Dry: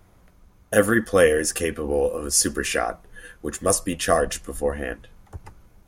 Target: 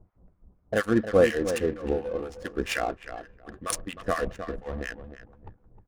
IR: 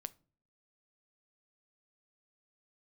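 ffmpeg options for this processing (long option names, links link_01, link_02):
-filter_complex "[0:a]acrossover=split=1100[link_01][link_02];[link_01]aeval=exprs='val(0)*(1-1/2+1/2*cos(2*PI*4.2*n/s))':channel_layout=same[link_03];[link_02]aeval=exprs='val(0)*(1-1/2-1/2*cos(2*PI*4.2*n/s))':channel_layout=same[link_04];[link_03][link_04]amix=inputs=2:normalize=0,asplit=2[link_05][link_06];[link_06]adelay=309,lowpass=frequency=4000:poles=1,volume=-10dB,asplit=2[link_07][link_08];[link_08]adelay=309,lowpass=frequency=4000:poles=1,volume=0.22,asplit=2[link_09][link_10];[link_10]adelay=309,lowpass=frequency=4000:poles=1,volume=0.22[link_11];[link_05][link_07][link_09][link_11]amix=inputs=4:normalize=0,adynamicsmooth=sensitivity=6.5:basefreq=670"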